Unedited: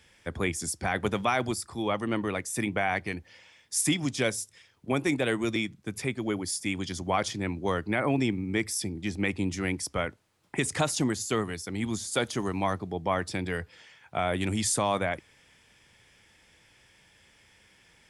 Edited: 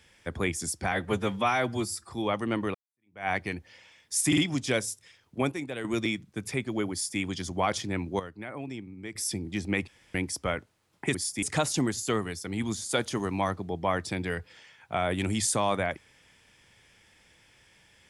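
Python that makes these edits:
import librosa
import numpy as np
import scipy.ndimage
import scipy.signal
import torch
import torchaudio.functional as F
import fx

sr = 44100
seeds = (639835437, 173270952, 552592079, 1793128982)

y = fx.edit(x, sr, fx.stretch_span(start_s=0.92, length_s=0.79, factor=1.5),
    fx.fade_in_span(start_s=2.35, length_s=0.53, curve='exp'),
    fx.stutter(start_s=3.88, slice_s=0.05, count=3),
    fx.clip_gain(start_s=5.02, length_s=0.33, db=-8.5),
    fx.duplicate(start_s=6.42, length_s=0.28, to_s=10.65),
    fx.clip_gain(start_s=7.7, length_s=0.96, db=-12.0),
    fx.room_tone_fill(start_s=9.38, length_s=0.27), tone=tone)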